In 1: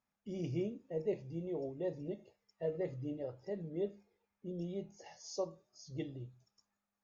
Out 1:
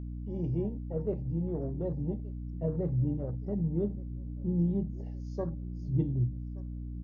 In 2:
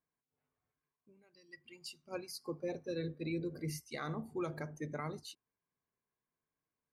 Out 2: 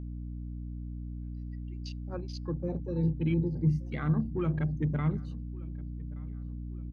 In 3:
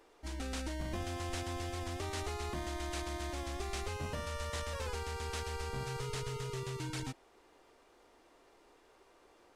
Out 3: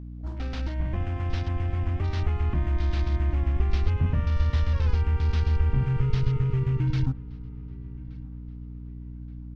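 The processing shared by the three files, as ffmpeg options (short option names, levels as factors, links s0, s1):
-filter_complex "[0:a]afwtdn=0.00355,lowpass=5000,asplit=2[s0][s1];[s1]adelay=1174,lowpass=f=3400:p=1,volume=0.0708,asplit=2[s2][s3];[s3]adelay=1174,lowpass=f=3400:p=1,volume=0.46,asplit=2[s4][s5];[s5]adelay=1174,lowpass=f=3400:p=1,volume=0.46[s6];[s0][s2][s4][s6]amix=inputs=4:normalize=0,asubboost=boost=8:cutoff=190,aeval=exprs='val(0)+0.00891*(sin(2*PI*60*n/s)+sin(2*PI*2*60*n/s)/2+sin(2*PI*3*60*n/s)/3+sin(2*PI*4*60*n/s)/4+sin(2*PI*5*60*n/s)/5)':c=same,volume=1.58"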